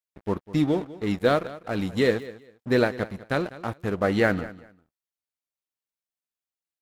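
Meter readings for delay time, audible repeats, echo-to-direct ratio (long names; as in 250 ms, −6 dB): 199 ms, 2, −17.5 dB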